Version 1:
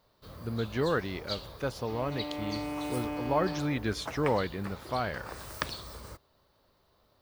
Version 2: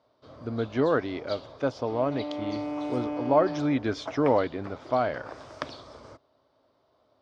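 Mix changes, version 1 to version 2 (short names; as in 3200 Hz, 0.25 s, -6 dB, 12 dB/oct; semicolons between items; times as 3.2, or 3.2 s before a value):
speech +3.5 dB; master: add speaker cabinet 120–5400 Hz, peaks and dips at 190 Hz -10 dB, 270 Hz +7 dB, 640 Hz +7 dB, 1800 Hz -5 dB, 2700 Hz -5 dB, 4200 Hz -7 dB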